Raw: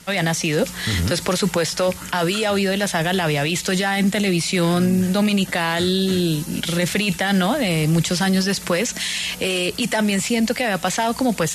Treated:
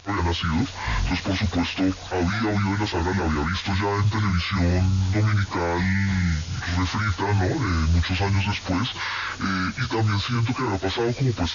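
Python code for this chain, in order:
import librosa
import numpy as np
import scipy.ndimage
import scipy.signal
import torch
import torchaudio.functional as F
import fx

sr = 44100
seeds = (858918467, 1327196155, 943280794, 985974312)

y = fx.pitch_bins(x, sr, semitones=-11.5)
y = y * 10.0 ** (-2.0 / 20.0)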